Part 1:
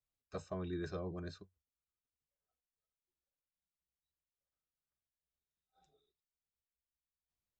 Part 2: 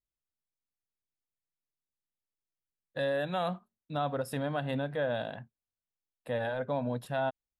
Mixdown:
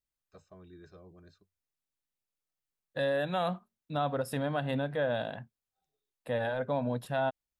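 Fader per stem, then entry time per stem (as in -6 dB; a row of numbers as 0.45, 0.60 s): -12.0, +1.0 dB; 0.00, 0.00 s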